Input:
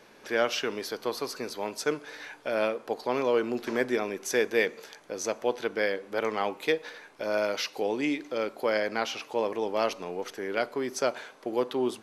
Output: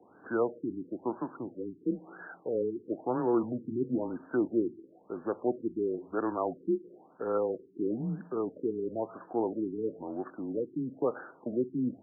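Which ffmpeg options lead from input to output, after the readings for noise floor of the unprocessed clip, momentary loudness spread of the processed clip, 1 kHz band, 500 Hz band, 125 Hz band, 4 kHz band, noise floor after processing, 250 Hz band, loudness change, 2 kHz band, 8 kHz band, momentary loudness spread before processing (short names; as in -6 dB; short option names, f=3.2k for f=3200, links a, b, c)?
-54 dBFS, 9 LU, -6.0 dB, -4.5 dB, +6.0 dB, under -40 dB, -59 dBFS, +2.5 dB, -3.5 dB, -16.0 dB, under -40 dB, 8 LU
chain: -af "highpass=f=300:t=q:w=0.5412,highpass=f=300:t=q:w=1.307,lowpass=f=3.2k:t=q:w=0.5176,lowpass=f=3.2k:t=q:w=0.7071,lowpass=f=3.2k:t=q:w=1.932,afreqshift=-120,afftfilt=real='re*lt(b*sr/1024,420*pow(1800/420,0.5+0.5*sin(2*PI*1*pts/sr)))':imag='im*lt(b*sr/1024,420*pow(1800/420,0.5+0.5*sin(2*PI*1*pts/sr)))':win_size=1024:overlap=0.75,volume=-1.5dB"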